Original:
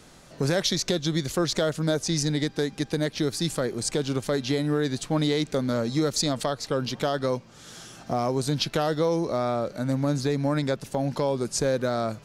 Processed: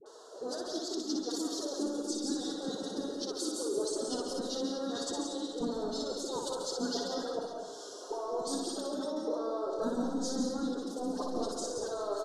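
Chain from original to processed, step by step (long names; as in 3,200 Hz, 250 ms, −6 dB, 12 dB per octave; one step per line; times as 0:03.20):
Butterworth high-pass 210 Hz 48 dB per octave
compressor whose output falls as the input rises −32 dBFS, ratio −1
reverb reduction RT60 0.55 s
dynamic equaliser 1,700 Hz, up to −5 dB, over −49 dBFS, Q 0.74
noise gate with hold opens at −42 dBFS
phase-vocoder pitch shift with formants kept +10.5 semitones
all-pass dispersion highs, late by 59 ms, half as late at 870 Hz
pitch-shifted copies added −5 semitones −15 dB
Butterworth band-reject 2,300 Hz, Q 0.85
high-frequency loss of the air 71 metres
reverse bouncing-ball delay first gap 60 ms, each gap 1.3×, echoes 5
on a send at −4.5 dB: convolution reverb RT60 0.45 s, pre-delay 133 ms
on the sum: level −2.5 dB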